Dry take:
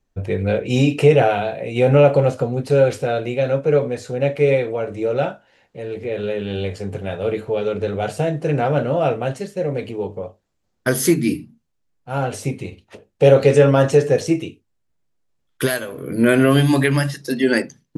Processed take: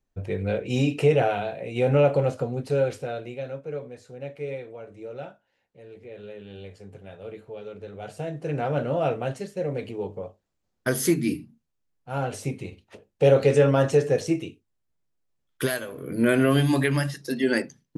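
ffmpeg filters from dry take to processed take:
-af "volume=4dB,afade=t=out:st=2.53:d=1.09:silence=0.316228,afade=t=in:st=7.92:d=1.01:silence=0.281838"

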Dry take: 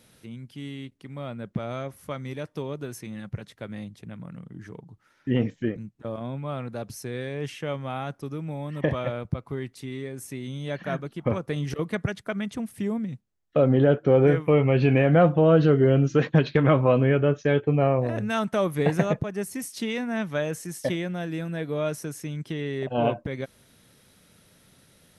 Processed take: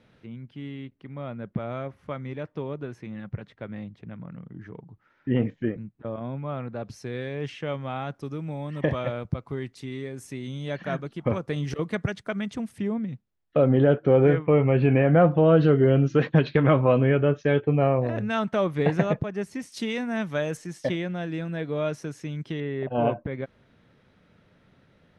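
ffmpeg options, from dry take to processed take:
-af "asetnsamples=n=441:p=0,asendcmd='6.85 lowpass f 4600;8.15 lowpass f 7500;12.78 lowpass f 3800;14.39 lowpass f 2300;15.32 lowpass f 4400;19.72 lowpass f 9300;20.57 lowpass f 4900;22.6 lowpass f 2200',lowpass=2.5k"

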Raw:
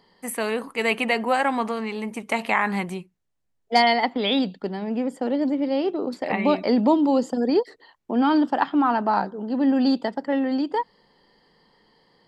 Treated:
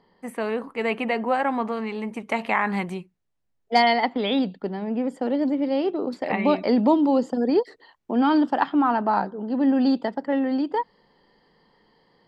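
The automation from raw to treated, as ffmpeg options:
-af "asetnsamples=n=441:p=0,asendcmd='1.72 lowpass f 2700;2.73 lowpass f 4600;4.21 lowpass f 2300;5.04 lowpass f 5000;7.08 lowpass f 3100;7.58 lowpass f 7100;8.73 lowpass f 3100',lowpass=f=1.4k:p=1"

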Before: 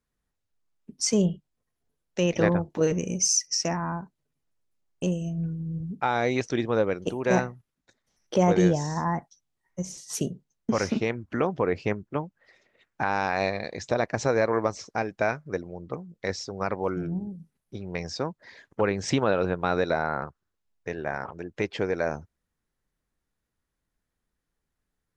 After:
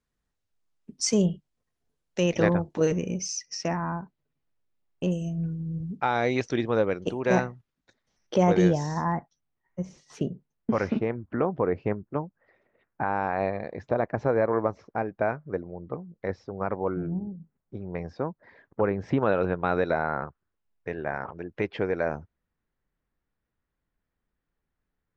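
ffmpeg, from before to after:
-af "asetnsamples=n=441:p=0,asendcmd='2.98 lowpass f 3600;5.11 lowpass f 8700;5.98 lowpass f 5400;9.12 lowpass f 2300;10.99 lowpass f 1400;19.23 lowpass f 2700',lowpass=8.8k"

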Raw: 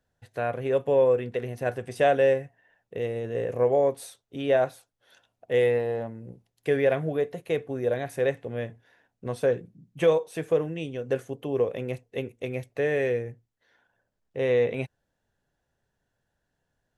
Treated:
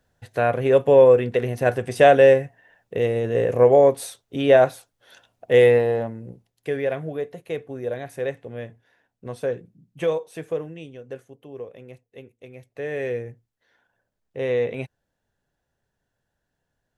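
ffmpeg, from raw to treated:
-af "volume=19dB,afade=t=out:st=5.73:d=0.99:silence=0.316228,afade=t=out:st=10.33:d=0.95:silence=0.354813,afade=t=in:st=12.57:d=0.63:silence=0.281838"

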